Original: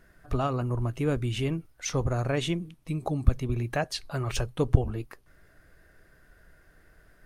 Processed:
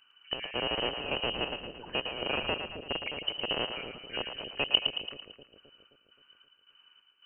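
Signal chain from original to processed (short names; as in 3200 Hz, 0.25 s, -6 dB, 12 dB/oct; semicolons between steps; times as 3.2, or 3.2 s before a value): rattling part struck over -26 dBFS, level -11 dBFS; chopper 1.8 Hz, depth 65%, duty 60%; inverted band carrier 3000 Hz; split-band echo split 540 Hz, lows 0.263 s, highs 0.112 s, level -6.5 dB; gain -7.5 dB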